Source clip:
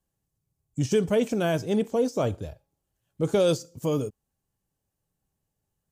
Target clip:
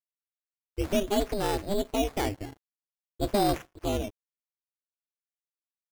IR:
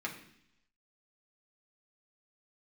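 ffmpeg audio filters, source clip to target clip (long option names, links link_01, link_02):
-af "acrusher=samples=14:mix=1:aa=0.000001:lfo=1:lforange=8.4:lforate=0.5,aeval=exprs='val(0)*sin(2*PI*200*n/s)':channel_layout=same,aeval=exprs='sgn(val(0))*max(abs(val(0))-0.00158,0)':channel_layout=same"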